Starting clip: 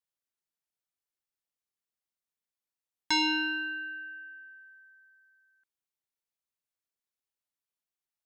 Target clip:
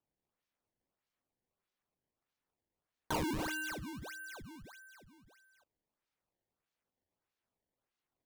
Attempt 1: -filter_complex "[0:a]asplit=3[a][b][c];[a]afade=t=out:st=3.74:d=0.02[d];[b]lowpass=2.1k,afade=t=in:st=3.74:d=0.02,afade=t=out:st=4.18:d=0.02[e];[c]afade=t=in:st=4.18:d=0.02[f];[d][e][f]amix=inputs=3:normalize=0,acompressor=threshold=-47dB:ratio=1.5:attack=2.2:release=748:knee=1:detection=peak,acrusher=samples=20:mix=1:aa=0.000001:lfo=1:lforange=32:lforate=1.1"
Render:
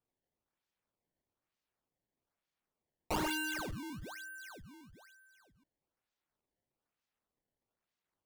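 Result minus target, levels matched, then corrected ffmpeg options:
decimation with a swept rate: distortion -4 dB
-filter_complex "[0:a]asplit=3[a][b][c];[a]afade=t=out:st=3.74:d=0.02[d];[b]lowpass=2.1k,afade=t=in:st=3.74:d=0.02,afade=t=out:st=4.18:d=0.02[e];[c]afade=t=in:st=4.18:d=0.02[f];[d][e][f]amix=inputs=3:normalize=0,acompressor=threshold=-47dB:ratio=1.5:attack=2.2:release=748:knee=1:detection=peak,acrusher=samples=20:mix=1:aa=0.000001:lfo=1:lforange=32:lforate=1.6"

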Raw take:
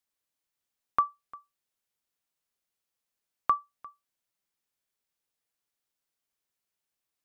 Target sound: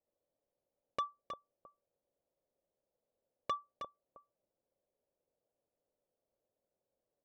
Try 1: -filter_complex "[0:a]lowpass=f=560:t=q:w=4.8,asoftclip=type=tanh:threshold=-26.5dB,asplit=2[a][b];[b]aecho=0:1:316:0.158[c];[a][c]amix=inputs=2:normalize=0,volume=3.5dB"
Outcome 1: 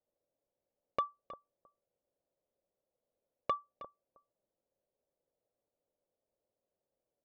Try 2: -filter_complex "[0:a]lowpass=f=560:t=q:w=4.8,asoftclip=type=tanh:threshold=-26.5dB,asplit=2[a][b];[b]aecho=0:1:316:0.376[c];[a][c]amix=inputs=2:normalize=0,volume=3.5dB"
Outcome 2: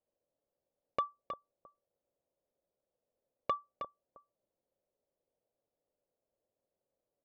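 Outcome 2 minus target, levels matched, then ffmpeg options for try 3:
soft clip: distortion -4 dB
-filter_complex "[0:a]lowpass=f=560:t=q:w=4.8,asoftclip=type=tanh:threshold=-33dB,asplit=2[a][b];[b]aecho=0:1:316:0.376[c];[a][c]amix=inputs=2:normalize=0,volume=3.5dB"

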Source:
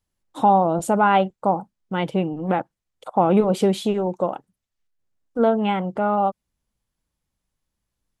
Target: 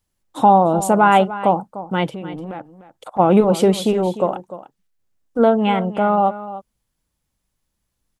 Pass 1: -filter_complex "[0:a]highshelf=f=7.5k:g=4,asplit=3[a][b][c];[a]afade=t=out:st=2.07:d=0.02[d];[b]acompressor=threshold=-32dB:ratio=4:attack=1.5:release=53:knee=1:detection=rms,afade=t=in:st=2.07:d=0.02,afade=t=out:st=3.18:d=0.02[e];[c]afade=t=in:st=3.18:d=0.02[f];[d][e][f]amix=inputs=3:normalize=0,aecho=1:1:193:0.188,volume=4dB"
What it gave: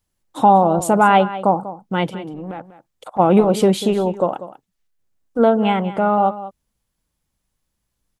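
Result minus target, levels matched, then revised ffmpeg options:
echo 0.106 s early
-filter_complex "[0:a]highshelf=f=7.5k:g=4,asplit=3[a][b][c];[a]afade=t=out:st=2.07:d=0.02[d];[b]acompressor=threshold=-32dB:ratio=4:attack=1.5:release=53:knee=1:detection=rms,afade=t=in:st=2.07:d=0.02,afade=t=out:st=3.18:d=0.02[e];[c]afade=t=in:st=3.18:d=0.02[f];[d][e][f]amix=inputs=3:normalize=0,aecho=1:1:299:0.188,volume=4dB"

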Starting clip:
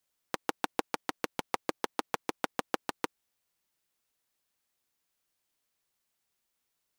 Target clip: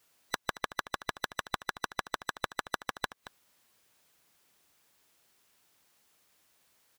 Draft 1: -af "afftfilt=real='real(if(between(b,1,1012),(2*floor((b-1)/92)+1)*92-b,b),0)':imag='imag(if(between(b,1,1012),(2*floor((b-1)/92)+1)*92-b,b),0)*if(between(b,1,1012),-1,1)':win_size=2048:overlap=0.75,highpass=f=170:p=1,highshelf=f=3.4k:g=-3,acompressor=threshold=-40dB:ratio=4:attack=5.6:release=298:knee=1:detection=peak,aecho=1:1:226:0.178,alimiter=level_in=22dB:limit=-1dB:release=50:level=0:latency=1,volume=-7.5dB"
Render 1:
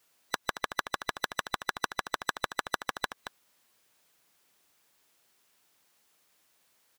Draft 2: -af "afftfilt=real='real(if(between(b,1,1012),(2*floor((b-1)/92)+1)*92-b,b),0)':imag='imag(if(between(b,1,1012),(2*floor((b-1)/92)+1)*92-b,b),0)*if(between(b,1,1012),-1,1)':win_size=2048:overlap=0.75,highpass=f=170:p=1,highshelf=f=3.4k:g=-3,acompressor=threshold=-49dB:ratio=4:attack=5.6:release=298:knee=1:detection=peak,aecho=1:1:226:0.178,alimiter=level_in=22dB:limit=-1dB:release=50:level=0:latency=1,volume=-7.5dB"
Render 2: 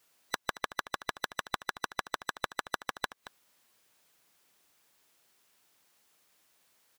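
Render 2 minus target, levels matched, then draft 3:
125 Hz band -3.0 dB
-af "afftfilt=real='real(if(between(b,1,1012),(2*floor((b-1)/92)+1)*92-b,b),0)':imag='imag(if(between(b,1,1012),(2*floor((b-1)/92)+1)*92-b,b),0)*if(between(b,1,1012),-1,1)':win_size=2048:overlap=0.75,highpass=f=69:p=1,highshelf=f=3.4k:g=-3,acompressor=threshold=-49dB:ratio=4:attack=5.6:release=298:knee=1:detection=peak,aecho=1:1:226:0.178,alimiter=level_in=22dB:limit=-1dB:release=50:level=0:latency=1,volume=-7.5dB"

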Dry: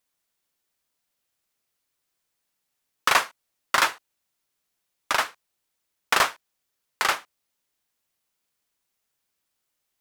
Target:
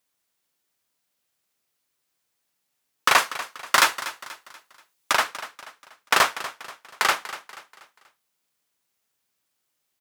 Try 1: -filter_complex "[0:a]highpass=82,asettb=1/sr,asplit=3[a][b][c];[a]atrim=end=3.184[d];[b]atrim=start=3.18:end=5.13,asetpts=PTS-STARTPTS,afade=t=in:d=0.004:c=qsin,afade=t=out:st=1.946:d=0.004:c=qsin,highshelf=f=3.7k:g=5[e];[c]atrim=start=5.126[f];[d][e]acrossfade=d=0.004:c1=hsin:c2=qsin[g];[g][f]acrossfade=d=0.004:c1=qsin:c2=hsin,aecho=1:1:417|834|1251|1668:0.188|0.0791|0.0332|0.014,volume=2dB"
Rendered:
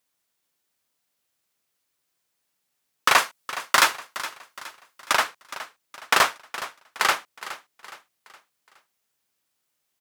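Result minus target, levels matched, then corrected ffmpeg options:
echo 0.176 s late
-filter_complex "[0:a]highpass=82,asettb=1/sr,asplit=3[a][b][c];[a]atrim=end=3.184[d];[b]atrim=start=3.18:end=5.13,asetpts=PTS-STARTPTS,afade=t=in:d=0.004:c=qsin,afade=t=out:st=1.946:d=0.004:c=qsin,highshelf=f=3.7k:g=5[e];[c]atrim=start=5.126[f];[d][e]acrossfade=d=0.004:c1=hsin:c2=qsin[g];[g][f]acrossfade=d=0.004:c1=qsin:c2=hsin,aecho=1:1:241|482|723|964:0.188|0.0791|0.0332|0.014,volume=2dB"

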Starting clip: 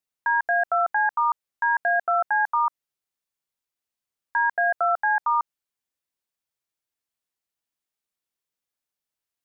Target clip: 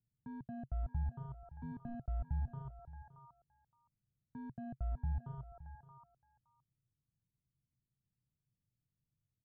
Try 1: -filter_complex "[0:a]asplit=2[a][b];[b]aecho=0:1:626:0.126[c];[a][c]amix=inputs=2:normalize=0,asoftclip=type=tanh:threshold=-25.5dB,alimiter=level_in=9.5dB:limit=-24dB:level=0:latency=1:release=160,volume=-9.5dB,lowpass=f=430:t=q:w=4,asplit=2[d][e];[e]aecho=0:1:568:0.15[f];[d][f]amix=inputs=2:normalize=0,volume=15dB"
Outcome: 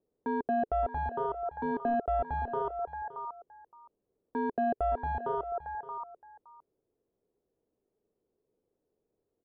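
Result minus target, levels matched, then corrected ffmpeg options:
500 Hz band +15.5 dB
-filter_complex "[0:a]asplit=2[a][b];[b]aecho=0:1:626:0.126[c];[a][c]amix=inputs=2:normalize=0,asoftclip=type=tanh:threshold=-25.5dB,alimiter=level_in=9.5dB:limit=-24dB:level=0:latency=1:release=160,volume=-9.5dB,lowpass=f=130:t=q:w=4,asplit=2[d][e];[e]aecho=0:1:568:0.15[f];[d][f]amix=inputs=2:normalize=0,volume=15dB"

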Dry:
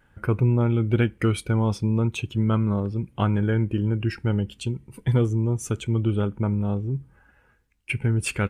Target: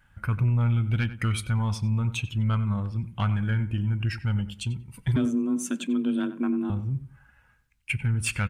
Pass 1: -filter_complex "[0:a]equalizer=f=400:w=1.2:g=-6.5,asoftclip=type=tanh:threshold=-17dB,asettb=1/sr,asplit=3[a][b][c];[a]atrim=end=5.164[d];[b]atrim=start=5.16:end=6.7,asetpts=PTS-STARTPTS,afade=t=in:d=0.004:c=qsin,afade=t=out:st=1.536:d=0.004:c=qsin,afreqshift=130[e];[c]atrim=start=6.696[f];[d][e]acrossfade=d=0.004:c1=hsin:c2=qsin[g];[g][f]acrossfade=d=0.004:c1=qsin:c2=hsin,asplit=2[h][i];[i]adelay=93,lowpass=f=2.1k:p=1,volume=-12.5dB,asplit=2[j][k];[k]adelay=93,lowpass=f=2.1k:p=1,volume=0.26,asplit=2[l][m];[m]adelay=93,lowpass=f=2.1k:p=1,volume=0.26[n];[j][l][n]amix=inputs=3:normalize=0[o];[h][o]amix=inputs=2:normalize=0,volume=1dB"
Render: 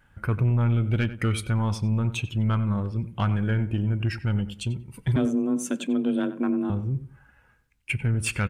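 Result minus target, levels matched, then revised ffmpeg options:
500 Hz band +4.5 dB
-filter_complex "[0:a]equalizer=f=400:w=1.2:g=-16.5,asoftclip=type=tanh:threshold=-17dB,asettb=1/sr,asplit=3[a][b][c];[a]atrim=end=5.164[d];[b]atrim=start=5.16:end=6.7,asetpts=PTS-STARTPTS,afade=t=in:d=0.004:c=qsin,afade=t=out:st=1.536:d=0.004:c=qsin,afreqshift=130[e];[c]atrim=start=6.696[f];[d][e]acrossfade=d=0.004:c1=hsin:c2=qsin[g];[g][f]acrossfade=d=0.004:c1=qsin:c2=hsin,asplit=2[h][i];[i]adelay=93,lowpass=f=2.1k:p=1,volume=-12.5dB,asplit=2[j][k];[k]adelay=93,lowpass=f=2.1k:p=1,volume=0.26,asplit=2[l][m];[m]adelay=93,lowpass=f=2.1k:p=1,volume=0.26[n];[j][l][n]amix=inputs=3:normalize=0[o];[h][o]amix=inputs=2:normalize=0,volume=1dB"

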